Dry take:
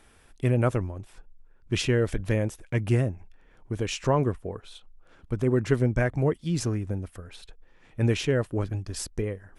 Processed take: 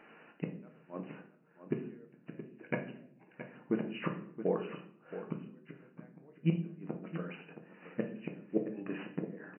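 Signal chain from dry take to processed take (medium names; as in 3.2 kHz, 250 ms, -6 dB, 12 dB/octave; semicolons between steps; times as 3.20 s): inverted gate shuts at -19 dBFS, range -39 dB; brick-wall FIR band-pass 150–3000 Hz; delay 672 ms -11.5 dB; simulated room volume 80 m³, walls mixed, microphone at 0.5 m; trim +2.5 dB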